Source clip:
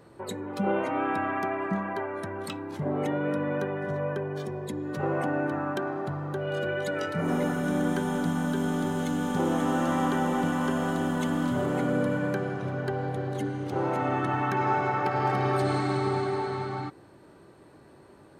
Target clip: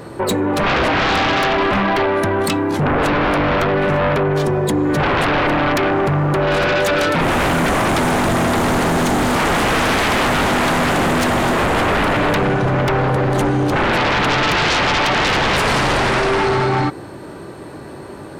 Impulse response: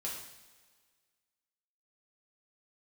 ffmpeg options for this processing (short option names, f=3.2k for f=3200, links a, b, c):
-af "aeval=exprs='0.224*sin(PI/2*6.31*val(0)/0.224)':c=same"